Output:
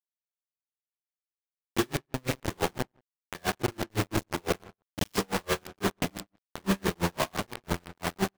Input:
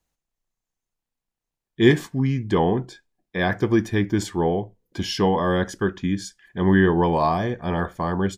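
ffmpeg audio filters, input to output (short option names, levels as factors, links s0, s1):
-filter_complex "[0:a]afftfilt=real='re':imag='-im':win_size=4096:overlap=0.75,agate=range=0.002:threshold=0.00891:ratio=16:detection=peak,dynaudnorm=f=680:g=5:m=1.41,adynamicequalizer=threshold=0.0112:dfrequency=960:dqfactor=3.7:tfrequency=960:tqfactor=3.7:attack=5:release=100:ratio=0.375:range=2:mode=cutabove:tftype=bell,acompressor=threshold=0.0562:ratio=3,highshelf=f=2900:g=-3,aeval=exprs='0.158*(cos(1*acos(clip(val(0)/0.158,-1,1)))-cos(1*PI/2))+0.0178*(cos(5*acos(clip(val(0)/0.158,-1,1)))-cos(5*PI/2))+0.002*(cos(6*acos(clip(val(0)/0.158,-1,1)))-cos(6*PI/2))+0.00224*(cos(8*acos(clip(val(0)/0.158,-1,1)))-cos(8*PI/2))':c=same,highpass=47,acrusher=bits=3:mix=0:aa=0.000001,asplit=2[s0][s1];[s1]adelay=92,lowpass=f=3200:p=1,volume=0.126,asplit=2[s2][s3];[s3]adelay=92,lowpass=f=3200:p=1,volume=0.17[s4];[s2][s4]amix=inputs=2:normalize=0[s5];[s0][s5]amix=inputs=2:normalize=0,aeval=exprs='0.168*(cos(1*acos(clip(val(0)/0.168,-1,1)))-cos(1*PI/2))+0.00376*(cos(8*acos(clip(val(0)/0.168,-1,1)))-cos(8*PI/2))':c=same,aeval=exprs='val(0)*pow(10,-39*(0.5-0.5*cos(2*PI*5.9*n/s))/20)':c=same"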